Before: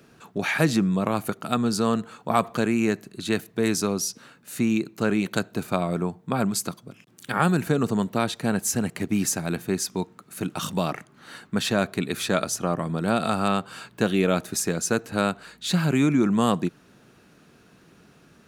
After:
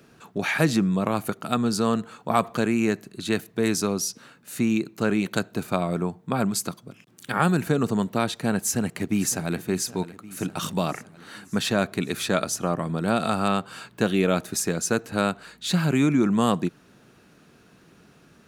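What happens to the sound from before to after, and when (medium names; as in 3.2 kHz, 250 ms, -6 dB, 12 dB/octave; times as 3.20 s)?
8.62–9.58 s: echo throw 560 ms, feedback 65%, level -16 dB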